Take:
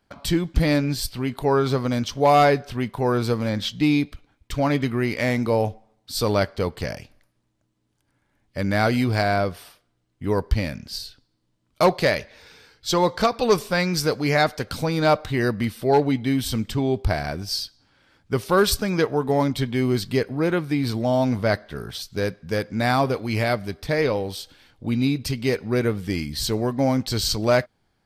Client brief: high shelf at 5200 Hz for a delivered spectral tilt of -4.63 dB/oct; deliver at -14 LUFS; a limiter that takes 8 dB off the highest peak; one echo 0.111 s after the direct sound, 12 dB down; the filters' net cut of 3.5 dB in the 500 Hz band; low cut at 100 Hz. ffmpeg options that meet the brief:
-af "highpass=100,equalizer=f=500:t=o:g=-4.5,highshelf=f=5.2k:g=7,alimiter=limit=-13.5dB:level=0:latency=1,aecho=1:1:111:0.251,volume=11.5dB"

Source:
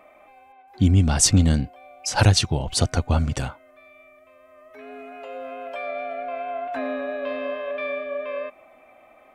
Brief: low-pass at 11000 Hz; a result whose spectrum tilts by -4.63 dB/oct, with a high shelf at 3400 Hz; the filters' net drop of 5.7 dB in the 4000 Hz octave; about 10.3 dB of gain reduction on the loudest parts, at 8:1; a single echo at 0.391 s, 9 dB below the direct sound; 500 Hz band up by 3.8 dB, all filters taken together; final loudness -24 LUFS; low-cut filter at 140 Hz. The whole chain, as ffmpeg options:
-af "highpass=140,lowpass=11k,equalizer=f=500:t=o:g=5,highshelf=f=3.4k:g=-4,equalizer=f=4k:t=o:g=-4,acompressor=threshold=-25dB:ratio=8,aecho=1:1:391:0.355,volume=6dB"

